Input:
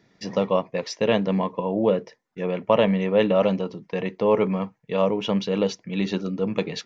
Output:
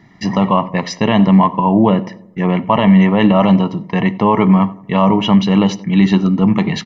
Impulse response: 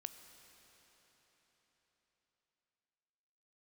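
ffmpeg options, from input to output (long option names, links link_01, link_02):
-filter_complex "[0:a]aecho=1:1:1:0.76,asplit=2[link_01][link_02];[link_02]adelay=88,lowpass=frequency=1100:poles=1,volume=-18dB,asplit=2[link_03][link_04];[link_04]adelay=88,lowpass=frequency=1100:poles=1,volume=0.54,asplit=2[link_05][link_06];[link_06]adelay=88,lowpass=frequency=1100:poles=1,volume=0.54,asplit=2[link_07][link_08];[link_08]adelay=88,lowpass=frequency=1100:poles=1,volume=0.54,asplit=2[link_09][link_10];[link_10]adelay=88,lowpass=frequency=1100:poles=1,volume=0.54[link_11];[link_01][link_03][link_05][link_07][link_09][link_11]amix=inputs=6:normalize=0,asplit=2[link_12][link_13];[1:a]atrim=start_sample=2205,afade=type=out:start_time=0.15:duration=0.01,atrim=end_sample=7056,lowpass=3100[link_14];[link_13][link_14]afir=irnorm=-1:irlink=0,volume=5.5dB[link_15];[link_12][link_15]amix=inputs=2:normalize=0,alimiter=level_in=7dB:limit=-1dB:release=50:level=0:latency=1,volume=-1dB"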